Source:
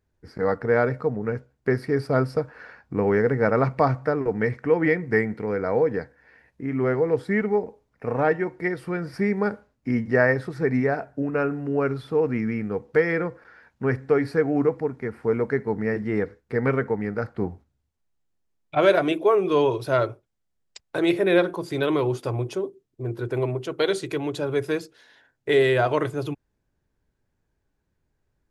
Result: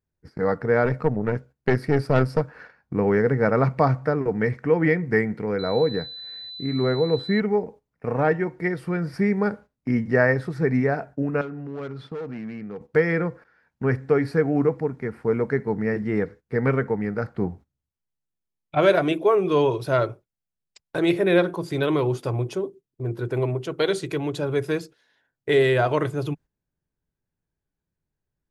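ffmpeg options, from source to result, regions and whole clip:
ffmpeg -i in.wav -filter_complex "[0:a]asettb=1/sr,asplit=3[link_01][link_02][link_03];[link_01]atrim=end=0.854[link_04];[link_02]atrim=start=0.85:end=2.42,asetpts=PTS-STARTPTS,afade=type=in:duration=0.004:curve=qsin,afade=type=out:start_time=1.566:duration=0.004:curve=qsin,acontrast=31,aeval=exprs='(tanh(3.98*val(0)+0.75)-tanh(0.75))/3.98':channel_layout=same[link_05];[link_03]atrim=start=2.416[link_06];[link_04][link_05]acrossfade=duration=0.004:curve1=hsin:curve2=qsin[link_07];[link_07][link_06]acrossfade=duration=0.004:curve1=qsin:curve2=hsin,asettb=1/sr,asplit=3[link_08][link_09][link_10];[link_08]atrim=end=5.594[link_11];[link_09]atrim=start=5.59:end=7.4,asetpts=PTS-STARTPTS,afade=type=in:duration=0.004:curve=qsin,afade=type=out:start_time=1.806:duration=0.004:curve=qsin,highshelf=frequency=3200:gain=-8,aeval=exprs='val(0)+0.0178*sin(2*PI*4000*n/s)':channel_layout=same[link_12];[link_10]atrim=start=7.396[link_13];[link_11][link_12]acrossfade=duration=0.004:curve1=hsin:curve2=qsin[link_14];[link_14][link_13]acrossfade=duration=0.004:curve1=qsin:curve2=hsin,asettb=1/sr,asplit=3[link_15][link_16][link_17];[link_15]atrim=end=11.414[link_18];[link_16]atrim=start=11.41:end=12.81,asetpts=PTS-STARTPTS,afade=type=in:duration=0.004:curve=qsin,afade=type=out:start_time=1.396:duration=0.004:curve=qsin,volume=20.5dB,asoftclip=hard,volume=-20.5dB,acompressor=threshold=-34dB:ratio=3:attack=3.2:release=140:knee=1:detection=peak,highpass=120,lowpass=5800[link_19];[link_17]atrim=start=12.806[link_20];[link_18][link_19]acrossfade=duration=0.004:curve1=hsin:curve2=qsin[link_21];[link_21][link_20]acrossfade=duration=0.004:curve1=qsin:curve2=hsin,equalizer=frequency=160:width=2.5:gain=6,agate=range=-11dB:threshold=-42dB:ratio=16:detection=peak" out.wav

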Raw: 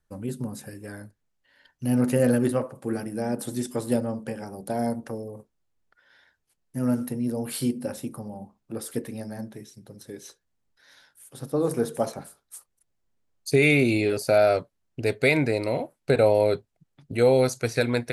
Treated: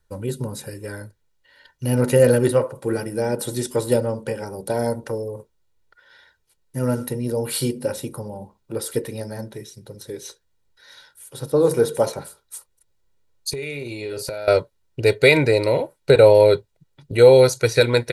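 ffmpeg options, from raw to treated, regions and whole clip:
ffmpeg -i in.wav -filter_complex "[0:a]asettb=1/sr,asplit=3[link_01][link_02][link_03];[link_01]atrim=end=13.504[link_04];[link_02]atrim=start=13.5:end=14.48,asetpts=PTS-STARTPTS,afade=type=in:duration=0.004:curve=qsin,afade=type=out:start_time=0.976:duration=0.004:curve=qsin,asplit=2[link_05][link_06];[link_06]adelay=42,volume=-12.5dB[link_07];[link_05][link_07]amix=inputs=2:normalize=0,atrim=end_sample=43218,acompressor=threshold=-32dB:ratio=16:attack=3.2:release=140:knee=1:detection=peak[link_08];[link_03]atrim=start=14.476[link_09];[link_04][link_08]acrossfade=duration=0.004:curve1=hsin:curve2=qsin[link_10];[link_10][link_09]acrossfade=duration=0.004:curve1=qsin:curve2=hsin,equalizer=frequency=3900:width=3.7:gain=4.5,aecho=1:1:2.1:0.54,volume=5.5dB" out.wav

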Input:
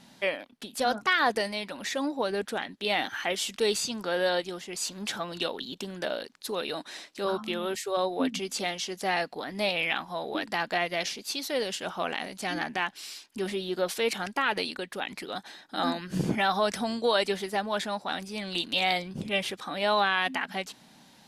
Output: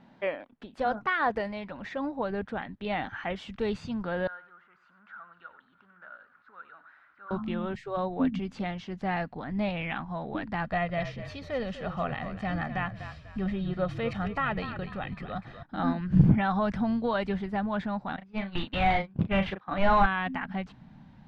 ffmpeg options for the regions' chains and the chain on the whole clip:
ffmpeg -i in.wav -filter_complex "[0:a]asettb=1/sr,asplit=3[link_01][link_02][link_03];[link_01]atrim=end=4.274[link_04];[link_02]atrim=start=4.27:end=7.31,asetpts=PTS-STARTPTS,afade=type=in:duration=0.004:curve=qsin,afade=type=out:start_time=3.036:duration=0.004:curve=qsin,aeval=exprs='val(0)+0.5*0.0126*sgn(val(0))':channel_layout=same,bandpass=frequency=1400:width_type=q:width=8.8,aecho=1:1:92:0.224,atrim=end_sample=134064[link_05];[link_03]atrim=start=7.306[link_06];[link_04][link_05]acrossfade=duration=0.004:curve1=hsin:curve2=qsin[link_07];[link_07][link_06]acrossfade=duration=0.004:curve1=qsin:curve2=hsin,asettb=1/sr,asplit=3[link_08][link_09][link_10];[link_08]atrim=end=10.644[link_11];[link_09]atrim=start=10.64:end=15.63,asetpts=PTS-STARTPTS,afade=type=in:duration=0.004:curve=qsin,afade=type=out:start_time=4.986:duration=0.004:curve=qsin,aecho=1:1:1.6:0.51,atrim=end_sample=220059,asplit=5[link_12][link_13][link_14][link_15][link_16];[link_13]adelay=246,afreqshift=-41,volume=-11dB[link_17];[link_14]adelay=492,afreqshift=-82,volume=-20.4dB[link_18];[link_15]adelay=738,afreqshift=-123,volume=-29.7dB[link_19];[link_16]adelay=984,afreqshift=-164,volume=-39.1dB[link_20];[link_12][link_17][link_18][link_19][link_20]amix=inputs=5:normalize=0,atrim=end_sample=220059[link_21];[link_10]atrim=start=15.626[link_22];[link_11][link_21]acrossfade=duration=0.004:curve1=hsin:curve2=qsin[link_23];[link_23][link_22]acrossfade=duration=0.004:curve1=qsin:curve2=hsin,asettb=1/sr,asplit=3[link_24][link_25][link_26];[link_24]atrim=end=18.164[link_27];[link_25]atrim=start=18.16:end=20.06,asetpts=PTS-STARTPTS,afade=type=in:duration=0.004:curve=qsin,afade=type=out:start_time=1.896:duration=0.004:curve=qsin,agate=range=-24dB:threshold=-35dB:ratio=16:release=100:detection=peak,asplit=2[link_28][link_29];[link_29]adelay=36,volume=-9dB[link_30];[link_28][link_30]amix=inputs=2:normalize=0,atrim=end_sample=83790,asplit=2[link_31][link_32];[link_32]highpass=frequency=720:poles=1,volume=18dB,asoftclip=type=tanh:threshold=-11dB[link_33];[link_31][link_33]amix=inputs=2:normalize=0,lowpass=frequency=2400:poles=1,volume=-6dB[link_34];[link_26]atrim=start=20.056[link_35];[link_27][link_34]acrossfade=duration=0.004:curve1=hsin:curve2=qsin[link_36];[link_36][link_35]acrossfade=duration=0.004:curve1=qsin:curve2=hsin,asubboost=boost=11.5:cutoff=120,lowpass=1600" out.wav

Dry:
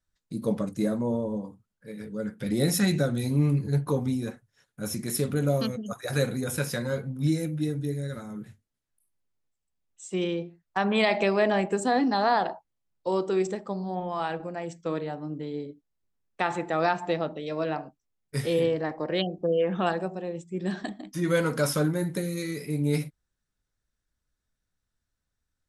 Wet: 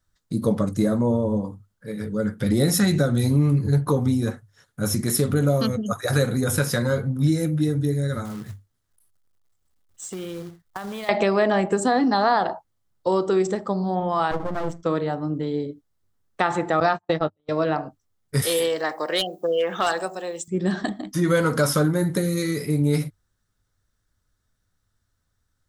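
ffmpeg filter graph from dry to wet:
ffmpeg -i in.wav -filter_complex "[0:a]asettb=1/sr,asplit=3[link_01][link_02][link_03];[link_01]atrim=end=8.254[link_04];[link_02]atrim=start=8.25:end=11.09,asetpts=PTS-STARTPTS,afade=type=in:duration=0.004:curve=qsin,afade=type=out:start_time=2.836:duration=0.004:curve=qsin,asubboost=boost=2:cutoff=130,acompressor=threshold=-38dB:ratio=8:attack=3.2:release=140:knee=1:detection=peak,acrusher=bits=3:mode=log:mix=0:aa=0.000001[link_05];[link_03]atrim=start=11.086[link_06];[link_04][link_05]acrossfade=duration=0.004:curve1=hsin:curve2=qsin[link_07];[link_07][link_06]acrossfade=duration=0.004:curve1=qsin:curve2=hsin,asettb=1/sr,asplit=3[link_08][link_09][link_10];[link_08]atrim=end=14.314[link_11];[link_09]atrim=start=14.31:end=14.83,asetpts=PTS-STARTPTS,afade=type=in:duration=0.004:curve=qsin,afade=type=out:start_time=0.516:duration=0.004:curve=qsin,tiltshelf=frequency=1300:gain=6,aeval=exprs='max(val(0),0)':channel_layout=same[link_12];[link_10]atrim=start=14.826[link_13];[link_11][link_12]acrossfade=duration=0.004:curve1=hsin:curve2=qsin[link_14];[link_14][link_13]acrossfade=duration=0.004:curve1=qsin:curve2=hsin,asettb=1/sr,asplit=3[link_15][link_16][link_17];[link_15]atrim=end=16.804[link_18];[link_16]atrim=start=16.8:end=17.49,asetpts=PTS-STARTPTS,afade=type=in:duration=0.004:curve=qsin,afade=type=out:start_time=0.686:duration=0.004:curve=qsin,agate=range=-48dB:threshold=-30dB:ratio=16:release=100:detection=peak,asplit=2[link_19][link_20];[link_20]adelay=13,volume=-11dB[link_21];[link_19][link_21]amix=inputs=2:normalize=0,atrim=end_sample=30429[link_22];[link_17]atrim=start=17.486[link_23];[link_18][link_22]acrossfade=duration=0.004:curve1=hsin:curve2=qsin[link_24];[link_24][link_23]acrossfade=duration=0.004:curve1=qsin:curve2=hsin,asettb=1/sr,asplit=3[link_25][link_26][link_27];[link_25]atrim=end=18.424[link_28];[link_26]atrim=start=18.42:end=20.48,asetpts=PTS-STARTPTS,afade=type=in:duration=0.004:curve=qsin,afade=type=out:start_time=2.056:duration=0.004:curve=qsin,highpass=frequency=360:poles=1,aemphasis=mode=production:type=riaa,volume=21dB,asoftclip=hard,volume=-21dB[link_29];[link_27]atrim=start=20.476[link_30];[link_28][link_29]acrossfade=duration=0.004:curve1=hsin:curve2=qsin[link_31];[link_31][link_30]acrossfade=duration=0.004:curve1=qsin:curve2=hsin,acompressor=threshold=-27dB:ratio=2,equalizer=frequency=100:width_type=o:width=0.33:gain=10,equalizer=frequency=1250:width_type=o:width=0.33:gain=4,equalizer=frequency=2500:width_type=o:width=0.33:gain=-6,volume=8dB" out.wav

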